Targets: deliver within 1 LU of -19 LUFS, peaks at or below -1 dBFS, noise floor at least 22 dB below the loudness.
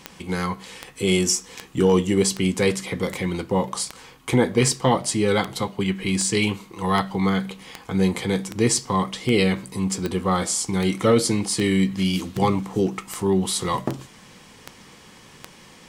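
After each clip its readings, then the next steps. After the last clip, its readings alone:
clicks found 21; loudness -22.5 LUFS; peak level -5.0 dBFS; loudness target -19.0 LUFS
-> de-click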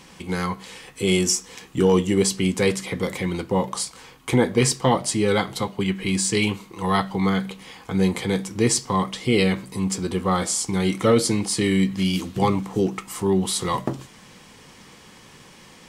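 clicks found 0; loudness -22.5 LUFS; peak level -5.5 dBFS; loudness target -19.0 LUFS
-> trim +3.5 dB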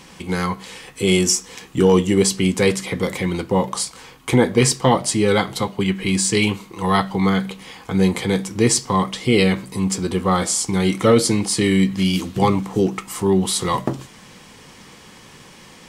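loudness -19.0 LUFS; peak level -2.0 dBFS; noise floor -45 dBFS

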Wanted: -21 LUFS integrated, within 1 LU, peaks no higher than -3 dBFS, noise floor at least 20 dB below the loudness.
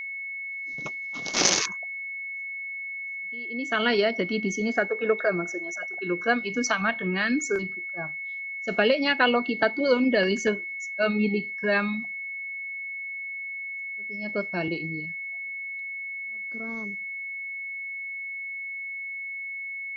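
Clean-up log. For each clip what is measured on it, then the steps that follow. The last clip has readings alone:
steady tone 2.2 kHz; tone level -32 dBFS; loudness -27.5 LUFS; peak level -3.5 dBFS; loudness target -21.0 LUFS
-> band-stop 2.2 kHz, Q 30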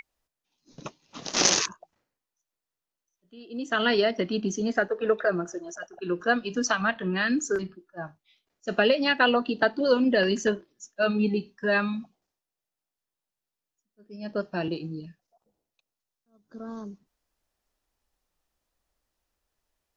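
steady tone not found; loudness -26.0 LUFS; peak level -4.0 dBFS; loudness target -21.0 LUFS
-> trim +5 dB; peak limiter -3 dBFS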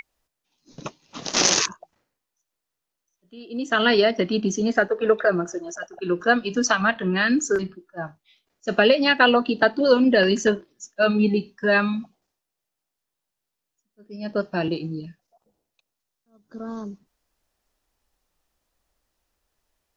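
loudness -21.0 LUFS; peak level -3.0 dBFS; noise floor -83 dBFS

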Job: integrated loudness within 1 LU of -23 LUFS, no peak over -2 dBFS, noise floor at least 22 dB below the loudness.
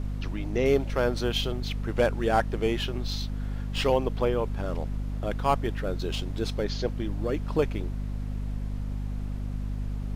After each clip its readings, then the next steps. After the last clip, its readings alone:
hum 50 Hz; highest harmonic 250 Hz; hum level -29 dBFS; noise floor -33 dBFS; noise floor target -51 dBFS; loudness -29.0 LUFS; peak level -10.5 dBFS; loudness target -23.0 LUFS
-> hum notches 50/100/150/200/250 Hz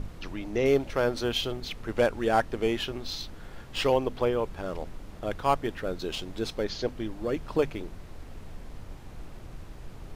hum not found; noise floor -45 dBFS; noise floor target -52 dBFS
-> noise print and reduce 7 dB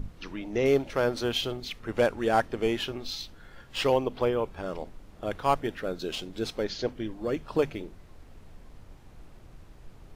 noise floor -51 dBFS; noise floor target -52 dBFS
-> noise print and reduce 6 dB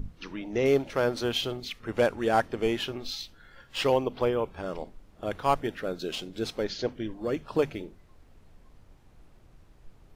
noise floor -57 dBFS; loudness -29.5 LUFS; peak level -11.5 dBFS; loudness target -23.0 LUFS
-> trim +6.5 dB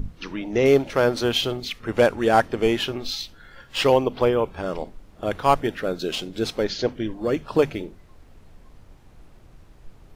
loudness -23.0 LUFS; peak level -5.0 dBFS; noise floor -51 dBFS

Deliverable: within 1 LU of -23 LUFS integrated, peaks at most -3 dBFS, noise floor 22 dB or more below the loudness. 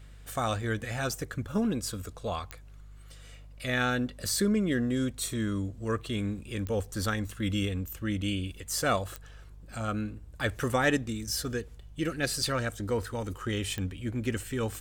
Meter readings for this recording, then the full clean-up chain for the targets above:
clicks found 4; hum 50 Hz; highest harmonic 150 Hz; hum level -47 dBFS; loudness -31.5 LUFS; peak level -14.0 dBFS; loudness target -23.0 LUFS
-> de-click; de-hum 50 Hz, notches 3; trim +8.5 dB

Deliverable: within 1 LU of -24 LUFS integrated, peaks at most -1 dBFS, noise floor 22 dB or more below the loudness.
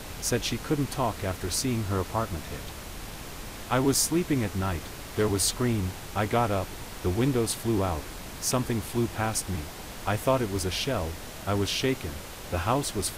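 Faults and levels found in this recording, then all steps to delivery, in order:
noise floor -41 dBFS; noise floor target -51 dBFS; loudness -28.5 LUFS; peak level -11.0 dBFS; loudness target -24.0 LUFS
-> noise print and reduce 10 dB; trim +4.5 dB

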